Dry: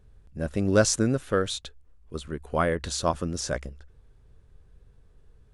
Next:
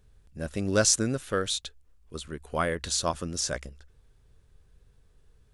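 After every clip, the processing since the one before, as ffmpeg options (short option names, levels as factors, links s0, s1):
-af "highshelf=f=2100:g=9,volume=0.596"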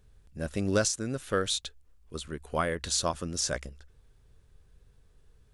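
-af "alimiter=limit=0.178:level=0:latency=1:release=403"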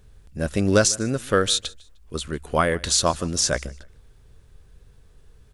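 -af "aecho=1:1:152|304:0.0708|0.0191,volume=2.66"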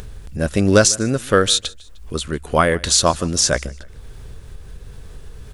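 -af "acompressor=mode=upward:threshold=0.0355:ratio=2.5,volume=1.78"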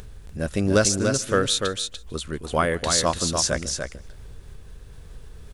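-af "aecho=1:1:293:0.531,volume=0.473"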